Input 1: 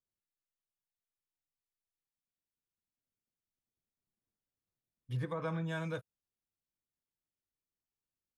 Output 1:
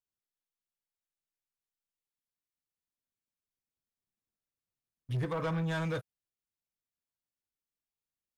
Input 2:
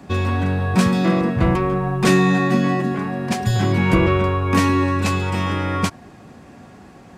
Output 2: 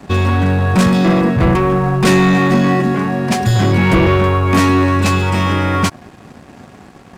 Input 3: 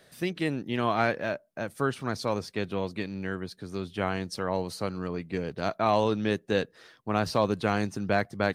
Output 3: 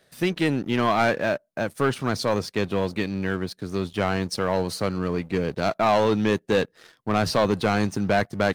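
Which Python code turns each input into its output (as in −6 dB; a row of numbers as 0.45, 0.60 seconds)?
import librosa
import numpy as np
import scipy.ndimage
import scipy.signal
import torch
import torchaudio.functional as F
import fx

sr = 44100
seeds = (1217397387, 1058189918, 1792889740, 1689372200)

y = fx.leveller(x, sr, passes=2)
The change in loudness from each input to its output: +4.0, +5.5, +5.5 LU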